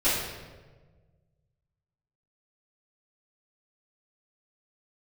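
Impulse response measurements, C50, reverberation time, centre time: 0.0 dB, 1.4 s, 80 ms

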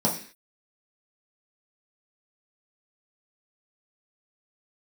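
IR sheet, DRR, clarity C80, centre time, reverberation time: -4.0 dB, 13.0 dB, 22 ms, 0.45 s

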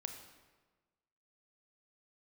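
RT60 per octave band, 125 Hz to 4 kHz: 1.4 s, 1.4 s, 1.4 s, 1.3 s, 1.1 s, 0.95 s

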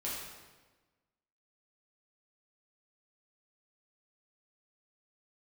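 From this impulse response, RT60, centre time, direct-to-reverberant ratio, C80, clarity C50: 1.3 s, 78 ms, -7.0 dB, 2.5 dB, 0.0 dB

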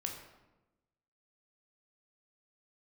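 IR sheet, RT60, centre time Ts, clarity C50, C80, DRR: 1.0 s, 33 ms, 5.5 dB, 7.5 dB, 1.5 dB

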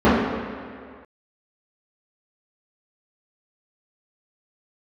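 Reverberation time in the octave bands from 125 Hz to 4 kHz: 1.7 s, 1.9 s, 2.0 s, 2.1 s, 2.1 s, 1.6 s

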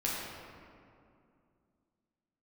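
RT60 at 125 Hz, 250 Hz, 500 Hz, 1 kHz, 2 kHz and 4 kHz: 2.9 s, 3.2 s, 2.6 s, 2.3 s, 1.8 s, 1.2 s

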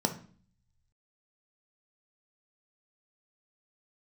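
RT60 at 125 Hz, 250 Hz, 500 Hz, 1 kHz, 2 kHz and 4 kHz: 1.3 s, 0.75 s, 0.45 s, 0.45 s, 0.40 s, 0.45 s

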